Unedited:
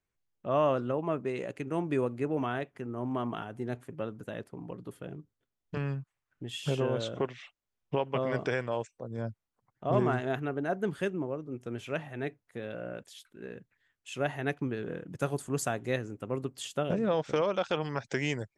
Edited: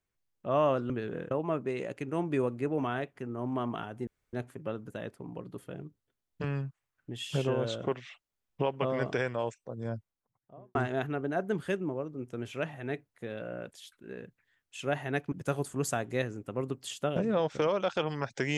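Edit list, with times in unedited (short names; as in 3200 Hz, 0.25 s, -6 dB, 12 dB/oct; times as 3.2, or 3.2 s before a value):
3.66 insert room tone 0.26 s
9.16–10.08 studio fade out
14.65–15.06 move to 0.9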